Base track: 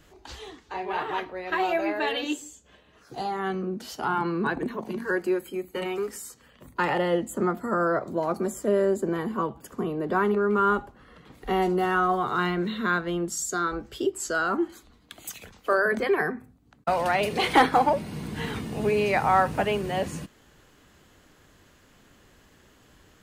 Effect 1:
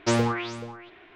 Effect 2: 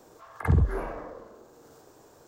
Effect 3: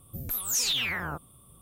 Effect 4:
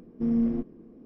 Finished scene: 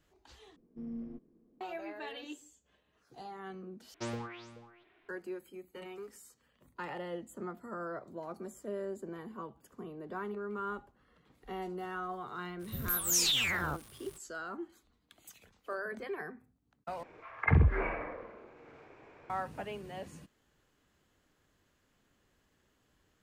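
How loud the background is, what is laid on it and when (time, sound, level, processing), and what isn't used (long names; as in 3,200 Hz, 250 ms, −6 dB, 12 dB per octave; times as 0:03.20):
base track −16 dB
0:00.56: overwrite with 4 −17 dB
0:03.94: overwrite with 1 −16 dB
0:12.59: mix in 3 −1.5 dB, fades 0.05 s + surface crackle 400 per second −41 dBFS
0:17.03: overwrite with 2 −2.5 dB + low-pass with resonance 2,300 Hz, resonance Q 7.1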